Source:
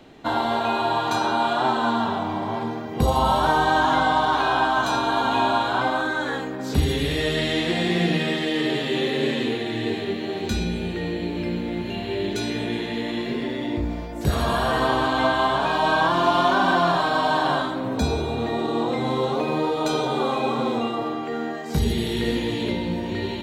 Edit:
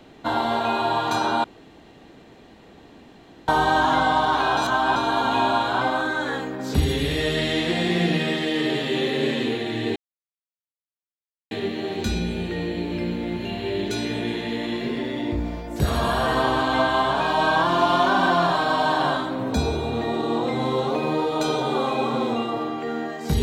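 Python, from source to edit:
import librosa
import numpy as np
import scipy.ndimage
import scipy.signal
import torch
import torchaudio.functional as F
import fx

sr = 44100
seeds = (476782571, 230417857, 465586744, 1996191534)

y = fx.edit(x, sr, fx.room_tone_fill(start_s=1.44, length_s=2.04),
    fx.reverse_span(start_s=4.57, length_s=0.39),
    fx.insert_silence(at_s=9.96, length_s=1.55), tone=tone)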